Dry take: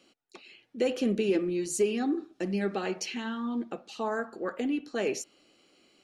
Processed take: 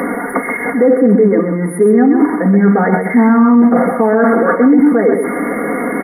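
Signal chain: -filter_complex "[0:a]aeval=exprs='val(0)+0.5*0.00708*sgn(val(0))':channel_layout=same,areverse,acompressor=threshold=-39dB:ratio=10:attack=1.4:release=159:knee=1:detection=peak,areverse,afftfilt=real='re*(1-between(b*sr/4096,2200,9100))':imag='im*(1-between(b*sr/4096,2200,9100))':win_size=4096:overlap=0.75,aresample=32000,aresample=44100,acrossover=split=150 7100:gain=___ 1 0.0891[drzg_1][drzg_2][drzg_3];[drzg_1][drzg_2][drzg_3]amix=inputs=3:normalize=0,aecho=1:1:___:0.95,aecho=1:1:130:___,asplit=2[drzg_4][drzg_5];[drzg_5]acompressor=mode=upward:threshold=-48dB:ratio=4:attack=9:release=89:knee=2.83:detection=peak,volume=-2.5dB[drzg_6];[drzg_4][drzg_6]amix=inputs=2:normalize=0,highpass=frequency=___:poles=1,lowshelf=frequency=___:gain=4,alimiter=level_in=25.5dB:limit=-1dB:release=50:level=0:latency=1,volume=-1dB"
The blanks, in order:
0.224, 4.2, 0.473, 58, 310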